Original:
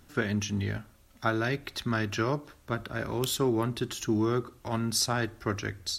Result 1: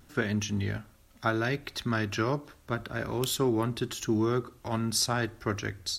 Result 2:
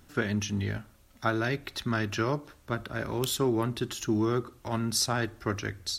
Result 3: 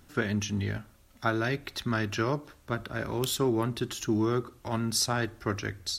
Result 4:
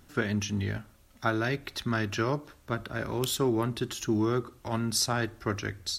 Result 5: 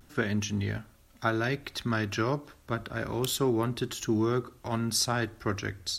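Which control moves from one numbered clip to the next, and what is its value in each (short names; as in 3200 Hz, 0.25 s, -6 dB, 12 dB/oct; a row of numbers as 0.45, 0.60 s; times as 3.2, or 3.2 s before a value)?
vibrato, rate: 0.77, 14, 9.6, 4.2, 0.3 Hz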